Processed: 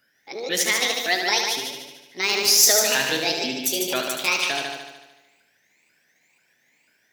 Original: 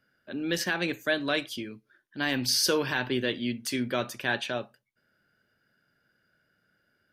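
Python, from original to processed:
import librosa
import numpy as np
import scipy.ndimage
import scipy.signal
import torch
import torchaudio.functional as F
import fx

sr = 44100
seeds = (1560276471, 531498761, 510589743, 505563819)

y = fx.pitch_ramps(x, sr, semitones=9.0, every_ms=491)
y = fx.tilt_eq(y, sr, slope=2.5)
y = fx.echo_heads(y, sr, ms=74, heads='first and second', feedback_pct=49, wet_db=-7.0)
y = F.gain(torch.from_numpy(y), 4.0).numpy()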